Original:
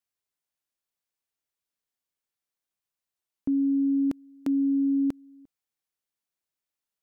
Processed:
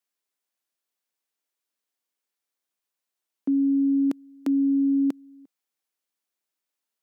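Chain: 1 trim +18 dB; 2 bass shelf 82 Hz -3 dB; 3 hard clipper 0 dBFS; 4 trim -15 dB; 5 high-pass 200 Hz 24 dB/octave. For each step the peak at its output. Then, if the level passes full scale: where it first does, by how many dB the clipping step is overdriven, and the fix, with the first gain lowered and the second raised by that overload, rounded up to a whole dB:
-2.5 dBFS, -2.5 dBFS, -2.5 dBFS, -17.5 dBFS, -13.5 dBFS; nothing clips

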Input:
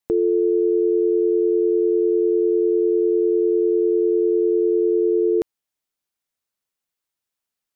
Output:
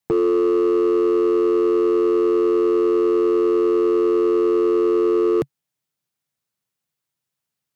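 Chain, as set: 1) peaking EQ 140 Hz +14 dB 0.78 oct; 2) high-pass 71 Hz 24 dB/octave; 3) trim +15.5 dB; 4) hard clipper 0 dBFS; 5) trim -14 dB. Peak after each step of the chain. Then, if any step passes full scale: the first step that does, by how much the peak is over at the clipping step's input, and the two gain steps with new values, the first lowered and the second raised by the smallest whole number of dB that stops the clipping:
-9.5 dBFS, -9.5 dBFS, +6.0 dBFS, 0.0 dBFS, -14.0 dBFS; step 3, 6.0 dB; step 3 +9.5 dB, step 5 -8 dB

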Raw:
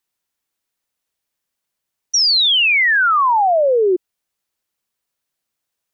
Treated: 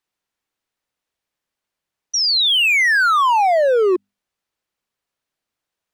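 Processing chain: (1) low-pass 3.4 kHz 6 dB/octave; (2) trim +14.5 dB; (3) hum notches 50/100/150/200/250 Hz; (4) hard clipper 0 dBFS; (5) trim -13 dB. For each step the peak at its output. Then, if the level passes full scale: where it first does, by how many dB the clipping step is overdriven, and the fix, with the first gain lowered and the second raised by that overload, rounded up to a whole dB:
-11.0 dBFS, +3.5 dBFS, +3.5 dBFS, 0.0 dBFS, -13.0 dBFS; step 2, 3.5 dB; step 2 +10.5 dB, step 5 -9 dB

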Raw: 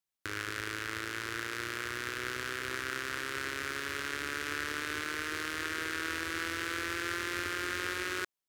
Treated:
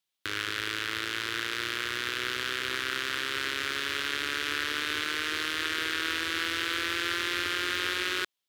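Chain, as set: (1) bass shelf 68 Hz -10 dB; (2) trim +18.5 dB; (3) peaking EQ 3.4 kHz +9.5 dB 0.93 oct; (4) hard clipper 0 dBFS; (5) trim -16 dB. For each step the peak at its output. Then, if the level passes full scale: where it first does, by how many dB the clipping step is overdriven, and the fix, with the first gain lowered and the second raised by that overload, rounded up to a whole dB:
-17.5 dBFS, +1.0 dBFS, +4.0 dBFS, 0.0 dBFS, -16.0 dBFS; step 2, 4.0 dB; step 2 +14.5 dB, step 5 -12 dB

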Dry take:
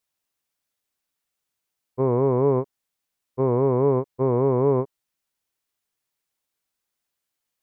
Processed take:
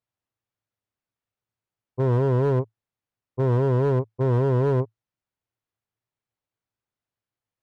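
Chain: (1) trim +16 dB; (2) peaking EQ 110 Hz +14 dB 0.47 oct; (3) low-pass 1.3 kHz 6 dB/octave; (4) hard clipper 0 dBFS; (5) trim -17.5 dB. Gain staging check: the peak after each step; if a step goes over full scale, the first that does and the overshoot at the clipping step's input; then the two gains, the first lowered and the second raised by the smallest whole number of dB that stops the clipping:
+7.0 dBFS, +6.0 dBFS, +5.5 dBFS, 0.0 dBFS, -17.5 dBFS; step 1, 5.5 dB; step 1 +10 dB, step 5 -11.5 dB

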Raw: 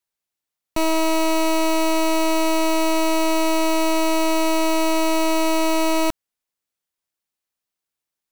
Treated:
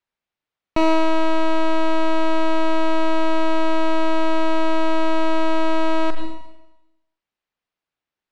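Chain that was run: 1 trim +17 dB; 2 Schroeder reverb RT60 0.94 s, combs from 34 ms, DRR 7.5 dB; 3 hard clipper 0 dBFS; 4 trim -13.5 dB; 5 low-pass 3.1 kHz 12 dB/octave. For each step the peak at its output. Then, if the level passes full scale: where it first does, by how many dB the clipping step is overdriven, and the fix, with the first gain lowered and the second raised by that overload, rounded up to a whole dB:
-1.0 dBFS, +8.0 dBFS, 0.0 dBFS, -13.5 dBFS, -13.0 dBFS; step 2, 8.0 dB; step 1 +9 dB, step 4 -5.5 dB

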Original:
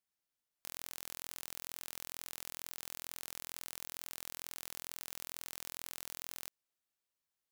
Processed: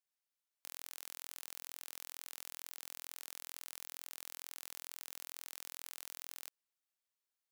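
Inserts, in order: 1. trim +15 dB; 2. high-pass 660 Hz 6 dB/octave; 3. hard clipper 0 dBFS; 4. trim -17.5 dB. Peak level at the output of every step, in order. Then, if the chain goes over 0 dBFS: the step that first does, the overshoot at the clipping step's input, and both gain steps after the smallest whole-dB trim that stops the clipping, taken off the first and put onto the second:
-1.5 dBFS, -2.0 dBFS, -2.0 dBFS, -19.5 dBFS; nothing clips

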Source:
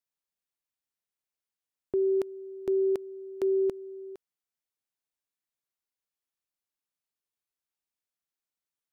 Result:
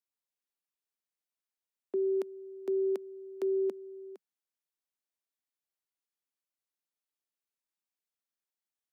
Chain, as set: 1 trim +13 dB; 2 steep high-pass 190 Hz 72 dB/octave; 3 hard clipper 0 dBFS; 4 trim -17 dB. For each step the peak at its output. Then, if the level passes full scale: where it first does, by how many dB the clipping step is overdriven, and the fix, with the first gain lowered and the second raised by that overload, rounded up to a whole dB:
-9.0 dBFS, -4.5 dBFS, -4.5 dBFS, -21.5 dBFS; nothing clips

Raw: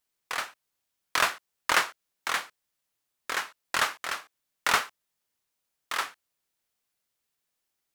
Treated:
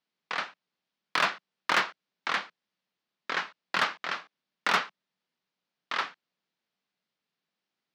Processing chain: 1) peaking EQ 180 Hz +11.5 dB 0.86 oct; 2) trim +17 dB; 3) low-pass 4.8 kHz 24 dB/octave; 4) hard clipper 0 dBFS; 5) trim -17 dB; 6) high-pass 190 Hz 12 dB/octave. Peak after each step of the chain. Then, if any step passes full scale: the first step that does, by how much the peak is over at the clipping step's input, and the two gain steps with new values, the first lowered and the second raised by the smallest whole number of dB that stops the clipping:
-7.5 dBFS, +9.5 dBFS, +9.0 dBFS, 0.0 dBFS, -17.0 dBFS, -14.0 dBFS; step 2, 9.0 dB; step 2 +8 dB, step 5 -8 dB

